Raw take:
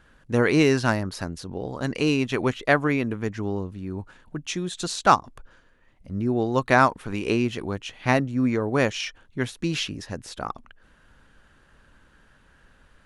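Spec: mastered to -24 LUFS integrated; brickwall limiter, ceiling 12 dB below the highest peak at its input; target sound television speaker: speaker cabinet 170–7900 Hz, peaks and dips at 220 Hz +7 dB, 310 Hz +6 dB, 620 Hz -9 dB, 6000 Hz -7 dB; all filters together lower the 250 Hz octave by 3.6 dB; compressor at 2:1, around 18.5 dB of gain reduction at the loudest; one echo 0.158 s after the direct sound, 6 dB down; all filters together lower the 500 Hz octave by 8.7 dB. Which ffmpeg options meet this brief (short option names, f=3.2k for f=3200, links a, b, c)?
-af "equalizer=f=250:t=o:g=-8,equalizer=f=500:t=o:g=-7.5,acompressor=threshold=-49dB:ratio=2,alimiter=level_in=11dB:limit=-24dB:level=0:latency=1,volume=-11dB,highpass=f=170:w=0.5412,highpass=f=170:w=1.3066,equalizer=f=220:t=q:w=4:g=7,equalizer=f=310:t=q:w=4:g=6,equalizer=f=620:t=q:w=4:g=-9,equalizer=f=6k:t=q:w=4:g=-7,lowpass=f=7.9k:w=0.5412,lowpass=f=7.9k:w=1.3066,aecho=1:1:158:0.501,volume=21.5dB"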